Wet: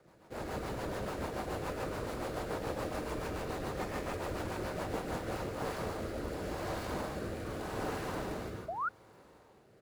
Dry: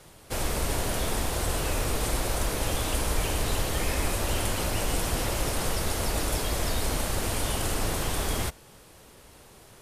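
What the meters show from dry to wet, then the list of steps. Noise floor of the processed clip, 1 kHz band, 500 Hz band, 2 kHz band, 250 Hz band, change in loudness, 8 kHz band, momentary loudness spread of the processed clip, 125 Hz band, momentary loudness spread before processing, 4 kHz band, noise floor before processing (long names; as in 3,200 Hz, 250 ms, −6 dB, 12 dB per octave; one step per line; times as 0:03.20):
−61 dBFS, −5.5 dB, −4.5 dB, −9.0 dB, −5.5 dB, −10.0 dB, −21.0 dB, 2 LU, −11.0 dB, 1 LU, −16.0 dB, −52 dBFS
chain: running median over 15 samples
repeating echo 197 ms, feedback 32%, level −13 dB
reverb whose tail is shaped and stops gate 180 ms rising, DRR 0.5 dB
sound drawn into the spectrogram rise, 0:08.68–0:08.89, 620–1,500 Hz −25 dBFS
rotating-speaker cabinet horn 7 Hz, later 0.85 Hz, at 0:04.86
high-pass filter 230 Hz 6 dB per octave
level −4 dB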